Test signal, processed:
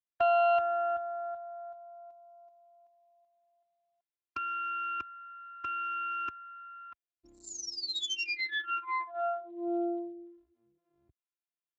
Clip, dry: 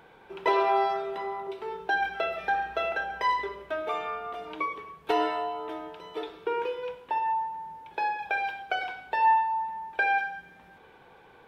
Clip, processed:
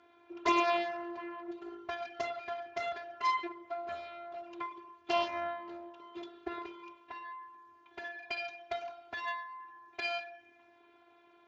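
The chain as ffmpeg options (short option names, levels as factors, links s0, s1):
-af "afftfilt=real='hypot(re,im)*cos(PI*b)':imag='0':win_size=512:overlap=0.75,aeval=exprs='0.251*(cos(1*acos(clip(val(0)/0.251,-1,1)))-cos(1*PI/2))+0.0447*(cos(8*acos(clip(val(0)/0.251,-1,1)))-cos(8*PI/2))':c=same,volume=0.708" -ar 16000 -c:a libspeex -b:a 34k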